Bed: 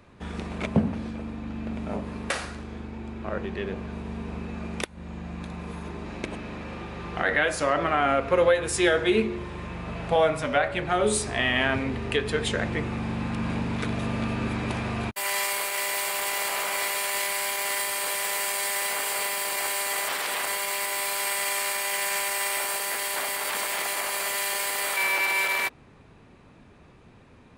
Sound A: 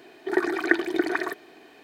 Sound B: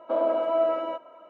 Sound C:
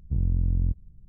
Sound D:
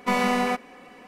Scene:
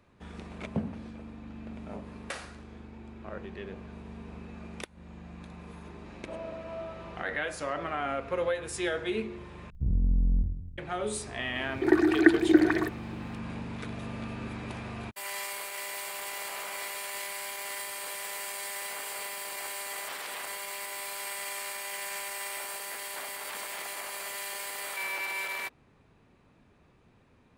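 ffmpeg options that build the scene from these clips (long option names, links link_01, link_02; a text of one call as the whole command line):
ffmpeg -i bed.wav -i cue0.wav -i cue1.wav -i cue2.wav -filter_complex "[0:a]volume=-9.5dB[link_01];[3:a]aecho=1:1:50|110|182|268.4|372.1:0.631|0.398|0.251|0.158|0.1[link_02];[1:a]equalizer=frequency=310:width=6.2:gain=14.5[link_03];[link_01]asplit=2[link_04][link_05];[link_04]atrim=end=9.704[link_06];[link_02]atrim=end=1.08,asetpts=PTS-STARTPTS,volume=-3dB[link_07];[link_05]atrim=start=10.776[link_08];[2:a]atrim=end=1.29,asetpts=PTS-STARTPTS,volume=-16.5dB,afade=type=in:duration=0.004:curve=hsin,afade=type=out:start_time=1.286:duration=0.004:curve=hsin,adelay=272538S[link_09];[link_03]atrim=end=1.83,asetpts=PTS-STARTPTS,volume=-3dB,afade=type=in:duration=0.004:curve=hsin,afade=type=out:start_time=1.826:duration=0.004:curve=hsin,adelay=11550[link_10];[link_06][link_07]acrossfade=duration=0.004:curve1=hsin:curve2=hsin[link_11];[link_11][link_08]acrossfade=duration=0.004:curve1=hsin:curve2=hsin[link_12];[link_12][link_09][link_10]amix=inputs=3:normalize=0" out.wav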